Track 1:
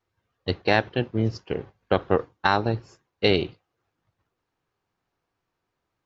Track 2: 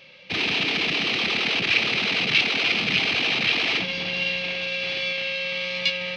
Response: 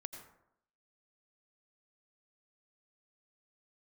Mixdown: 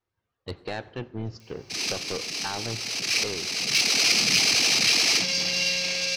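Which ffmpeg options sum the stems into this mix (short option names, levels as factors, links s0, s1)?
-filter_complex "[0:a]alimiter=limit=0.398:level=0:latency=1:release=261,asoftclip=type=tanh:threshold=0.119,volume=0.422,afade=t=out:st=3.2:d=0.38:silence=0.251189,asplit=3[s0][s1][s2];[s1]volume=0.316[s3];[1:a]highshelf=f=4400:g=4,aexciter=amount=9.1:drive=9.3:freq=5200,asoftclip=type=tanh:threshold=0.562,adelay=1400,volume=0.75[s4];[s2]apad=whole_len=333819[s5];[s4][s5]sidechaincompress=threshold=0.00708:ratio=6:attack=7.1:release=706[s6];[2:a]atrim=start_sample=2205[s7];[s3][s7]afir=irnorm=-1:irlink=0[s8];[s0][s6][s8]amix=inputs=3:normalize=0"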